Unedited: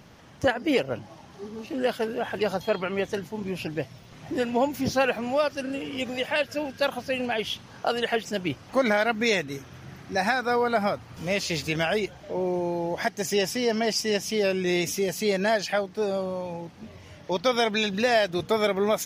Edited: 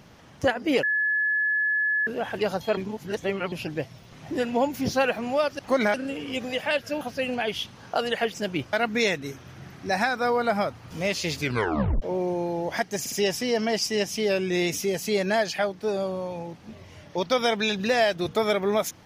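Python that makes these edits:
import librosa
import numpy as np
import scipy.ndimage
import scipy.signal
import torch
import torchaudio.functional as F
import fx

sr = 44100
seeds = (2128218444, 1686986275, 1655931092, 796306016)

y = fx.edit(x, sr, fx.bleep(start_s=0.83, length_s=1.24, hz=1710.0, db=-21.0),
    fx.reverse_span(start_s=2.77, length_s=0.75),
    fx.cut(start_s=6.66, length_s=0.26),
    fx.move(start_s=8.64, length_s=0.35, to_s=5.59),
    fx.tape_stop(start_s=11.65, length_s=0.63),
    fx.stutter(start_s=13.26, slice_s=0.06, count=3), tone=tone)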